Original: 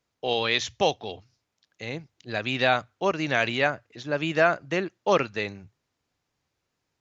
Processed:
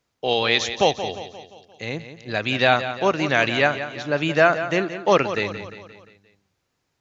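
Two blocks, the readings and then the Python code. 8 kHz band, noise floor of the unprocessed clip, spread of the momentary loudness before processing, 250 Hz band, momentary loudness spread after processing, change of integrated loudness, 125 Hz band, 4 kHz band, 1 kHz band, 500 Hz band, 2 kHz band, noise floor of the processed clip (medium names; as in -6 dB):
no reading, -81 dBFS, 14 LU, +5.0 dB, 15 LU, +4.5 dB, +5.0 dB, +5.0 dB, +5.0 dB, +5.0 dB, +5.0 dB, -75 dBFS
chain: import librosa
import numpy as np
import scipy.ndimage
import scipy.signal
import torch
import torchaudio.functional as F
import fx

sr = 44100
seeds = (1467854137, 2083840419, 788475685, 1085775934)

y = fx.echo_feedback(x, sr, ms=175, feedback_pct=51, wet_db=-11.5)
y = F.gain(torch.from_numpy(y), 4.5).numpy()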